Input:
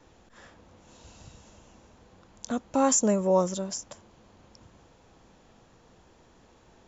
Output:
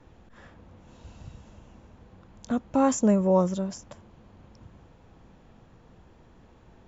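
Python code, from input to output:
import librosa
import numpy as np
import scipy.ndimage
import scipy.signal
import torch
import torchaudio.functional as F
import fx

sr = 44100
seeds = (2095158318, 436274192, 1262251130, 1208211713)

y = fx.bass_treble(x, sr, bass_db=7, treble_db=-10)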